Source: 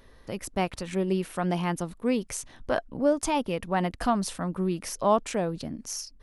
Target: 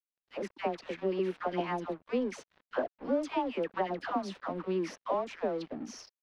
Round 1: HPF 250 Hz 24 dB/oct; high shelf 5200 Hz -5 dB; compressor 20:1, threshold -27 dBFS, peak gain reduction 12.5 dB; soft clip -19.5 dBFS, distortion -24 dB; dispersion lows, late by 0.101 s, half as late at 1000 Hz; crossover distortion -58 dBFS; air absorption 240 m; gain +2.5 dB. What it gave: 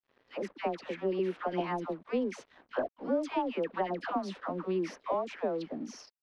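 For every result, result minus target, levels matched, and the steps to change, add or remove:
soft clip: distortion +13 dB; crossover distortion: distortion -8 dB; 8000 Hz band -2.0 dB
change: soft clip -12 dBFS, distortion -37 dB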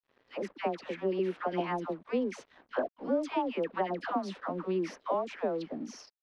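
crossover distortion: distortion -8 dB; 8000 Hz band -2.5 dB
change: crossover distortion -49 dBFS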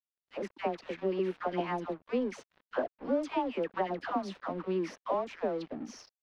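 8000 Hz band -3.5 dB
remove: high shelf 5200 Hz -5 dB

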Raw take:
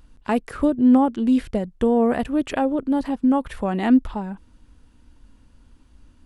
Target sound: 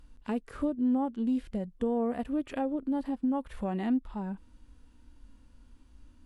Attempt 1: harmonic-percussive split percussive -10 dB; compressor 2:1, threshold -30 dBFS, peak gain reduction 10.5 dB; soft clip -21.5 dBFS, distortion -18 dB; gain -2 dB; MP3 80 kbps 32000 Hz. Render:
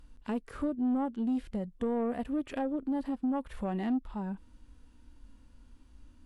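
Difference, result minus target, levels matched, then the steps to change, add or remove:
soft clip: distortion +18 dB
change: soft clip -11 dBFS, distortion -36 dB

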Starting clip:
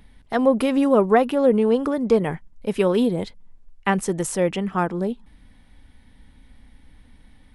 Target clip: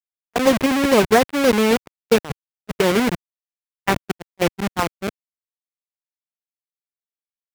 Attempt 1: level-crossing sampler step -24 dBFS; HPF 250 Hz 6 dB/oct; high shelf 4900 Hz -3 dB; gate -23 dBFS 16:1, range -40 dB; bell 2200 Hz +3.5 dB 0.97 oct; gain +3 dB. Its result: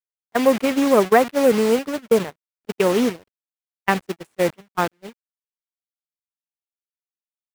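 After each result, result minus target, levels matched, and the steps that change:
level-crossing sampler: distortion -10 dB; 125 Hz band -3.5 dB
change: level-crossing sampler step -15 dBFS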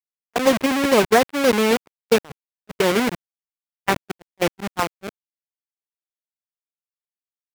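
125 Hz band -3.0 dB
change: HPF 110 Hz 6 dB/oct

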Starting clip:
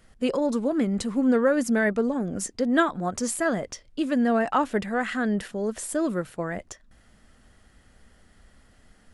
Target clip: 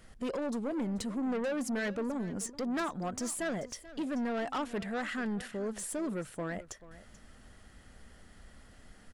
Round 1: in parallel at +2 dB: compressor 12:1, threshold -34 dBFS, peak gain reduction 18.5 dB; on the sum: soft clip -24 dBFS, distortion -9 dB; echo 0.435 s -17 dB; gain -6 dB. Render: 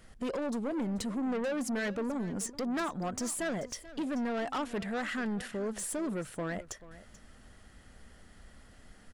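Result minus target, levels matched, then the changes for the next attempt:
compressor: peak gain reduction -10.5 dB
change: compressor 12:1, threshold -45.5 dBFS, peak gain reduction 29 dB

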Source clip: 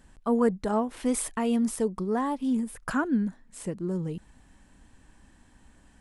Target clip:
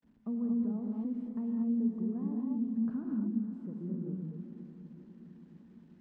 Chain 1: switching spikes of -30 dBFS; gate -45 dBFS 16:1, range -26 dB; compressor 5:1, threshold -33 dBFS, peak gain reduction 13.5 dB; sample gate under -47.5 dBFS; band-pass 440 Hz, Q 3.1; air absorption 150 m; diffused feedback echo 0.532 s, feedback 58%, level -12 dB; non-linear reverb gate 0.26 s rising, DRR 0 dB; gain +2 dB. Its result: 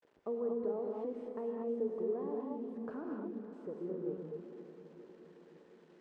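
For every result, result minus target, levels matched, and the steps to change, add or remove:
500 Hz band +17.0 dB; sample gate: distortion +10 dB
change: band-pass 220 Hz, Q 3.1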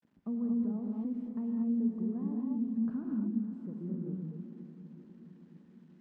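sample gate: distortion +10 dB
change: sample gate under -57 dBFS

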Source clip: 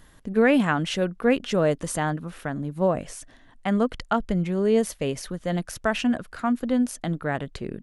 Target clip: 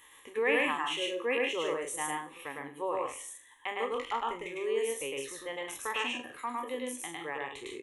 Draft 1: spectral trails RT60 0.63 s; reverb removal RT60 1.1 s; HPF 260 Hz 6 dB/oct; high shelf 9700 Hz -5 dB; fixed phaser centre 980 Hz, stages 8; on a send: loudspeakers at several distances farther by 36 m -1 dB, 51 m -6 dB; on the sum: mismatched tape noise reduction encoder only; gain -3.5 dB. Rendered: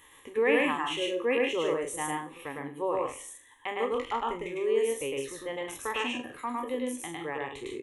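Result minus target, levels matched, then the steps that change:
250 Hz band +3.5 dB
change: HPF 760 Hz 6 dB/oct

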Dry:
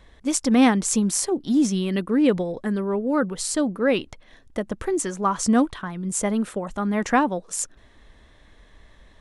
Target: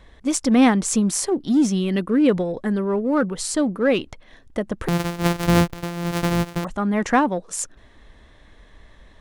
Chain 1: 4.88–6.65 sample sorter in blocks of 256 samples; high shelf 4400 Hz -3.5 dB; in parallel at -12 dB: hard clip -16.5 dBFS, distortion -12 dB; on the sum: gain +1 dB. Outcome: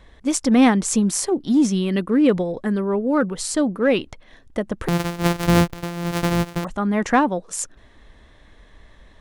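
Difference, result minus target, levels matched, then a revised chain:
hard clip: distortion -7 dB
4.88–6.65 sample sorter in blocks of 256 samples; high shelf 4400 Hz -3.5 dB; in parallel at -12 dB: hard clip -24 dBFS, distortion -6 dB; on the sum: gain +1 dB

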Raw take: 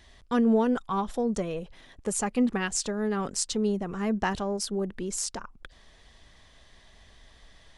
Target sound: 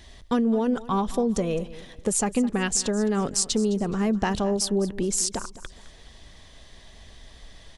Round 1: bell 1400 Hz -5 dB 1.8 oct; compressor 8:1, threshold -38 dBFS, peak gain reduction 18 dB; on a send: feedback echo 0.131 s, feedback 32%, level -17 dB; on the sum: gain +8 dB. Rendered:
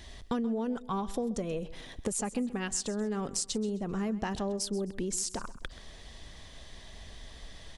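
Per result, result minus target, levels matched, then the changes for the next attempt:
compressor: peak gain reduction +9 dB; echo 80 ms early
change: compressor 8:1, threshold -27.5 dBFS, peak gain reduction 9 dB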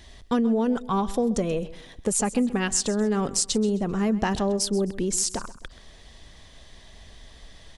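echo 80 ms early
change: feedback echo 0.211 s, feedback 32%, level -17 dB

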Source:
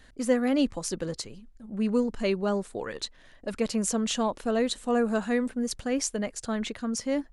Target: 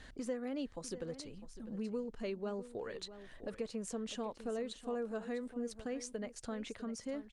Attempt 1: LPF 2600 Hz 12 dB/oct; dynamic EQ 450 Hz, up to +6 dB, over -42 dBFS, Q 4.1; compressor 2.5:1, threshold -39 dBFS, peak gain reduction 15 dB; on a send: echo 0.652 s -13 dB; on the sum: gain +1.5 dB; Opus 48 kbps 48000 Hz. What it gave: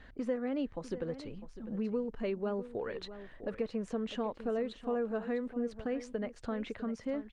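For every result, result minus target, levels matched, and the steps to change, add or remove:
8000 Hz band -16.0 dB; compressor: peak gain reduction -5 dB
change: LPF 8200 Hz 12 dB/oct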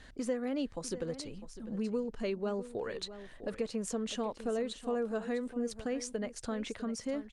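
compressor: peak gain reduction -5 dB
change: compressor 2.5:1, threshold -47.5 dBFS, peak gain reduction 20 dB

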